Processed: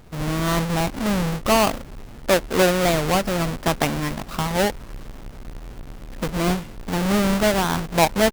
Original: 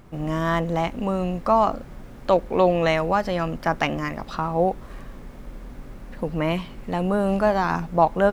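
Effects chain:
each half-wave held at its own peak
wow of a warped record 33 1/3 rpm, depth 160 cents
level −3 dB

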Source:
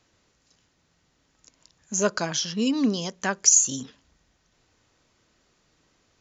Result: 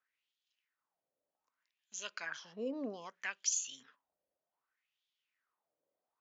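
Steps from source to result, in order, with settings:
noise gate −47 dBFS, range −10 dB
LFO wah 0.64 Hz 550–3,400 Hz, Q 4.9

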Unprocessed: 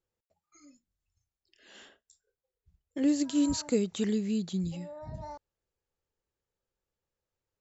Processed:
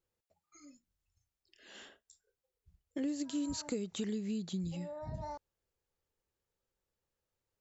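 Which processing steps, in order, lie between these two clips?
downward compressor 4 to 1, threshold −35 dBFS, peak gain reduction 11.5 dB

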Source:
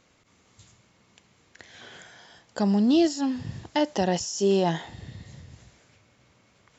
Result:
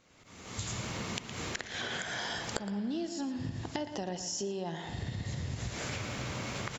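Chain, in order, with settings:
camcorder AGC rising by 42 dB per second
on a send: single-tap delay 115 ms −13 dB
on the sum: downward compressor, threshold −29 dBFS, peak gain reduction 16.5 dB
spring reverb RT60 2.9 s, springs 47/55 ms, chirp 45 ms, DRR 13 dB
level −4.5 dB

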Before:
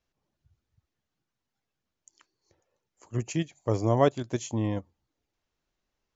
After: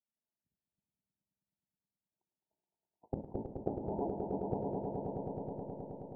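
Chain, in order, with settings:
sub-harmonics by changed cycles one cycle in 3, inverted
high-pass filter 100 Hz 12 dB per octave
noise gate −52 dBFS, range −35 dB
Butterworth low-pass 820 Hz 96 dB per octave
parametric band 200 Hz +6.5 dB 0.45 octaves
in parallel at +3 dB: downward compressor, threshold −32 dBFS, peak gain reduction 15 dB
on the sum: gate with flip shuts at −26 dBFS, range −24 dB
formants moved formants +3 semitones
echo that builds up and dies away 106 ms, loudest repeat 5, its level −7 dB
on a send at −12.5 dB: convolution reverb RT60 2.5 s, pre-delay 10 ms
on the sum: level +4.5 dB

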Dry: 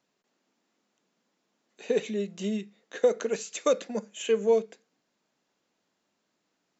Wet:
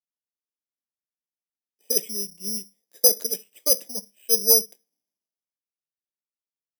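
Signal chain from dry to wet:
parametric band 1,400 Hz −13 dB 0.56 octaves
bad sample-rate conversion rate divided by 8×, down filtered, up zero stuff
multiband upward and downward expander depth 70%
level −6.5 dB

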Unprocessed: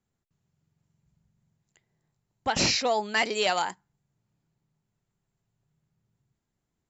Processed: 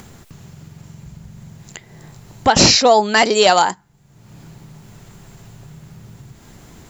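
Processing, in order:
dynamic equaliser 2,300 Hz, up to −7 dB, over −42 dBFS, Q 1.5
in parallel at +1 dB: upward compression, threshold −27 dBFS
on the sum: level +8 dB

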